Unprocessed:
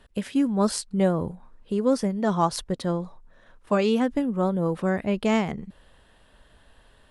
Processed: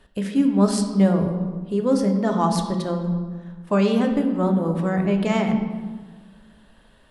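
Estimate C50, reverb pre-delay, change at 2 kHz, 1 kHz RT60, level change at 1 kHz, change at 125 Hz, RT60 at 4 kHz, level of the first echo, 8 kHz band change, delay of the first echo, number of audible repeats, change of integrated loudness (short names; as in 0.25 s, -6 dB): 6.5 dB, 3 ms, +1.0 dB, 1.4 s, +2.0 dB, +6.0 dB, 0.95 s, none, +0.5 dB, none, none, +3.5 dB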